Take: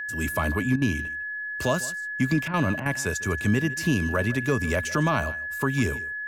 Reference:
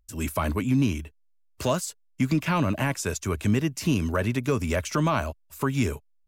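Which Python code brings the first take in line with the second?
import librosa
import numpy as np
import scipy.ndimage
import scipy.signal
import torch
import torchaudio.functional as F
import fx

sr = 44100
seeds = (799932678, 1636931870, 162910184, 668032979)

y = fx.notch(x, sr, hz=1700.0, q=30.0)
y = fx.fix_interpolate(y, sr, at_s=(0.76, 2.48, 2.8), length_ms=56.0)
y = fx.fix_echo_inverse(y, sr, delay_ms=152, level_db=-18.5)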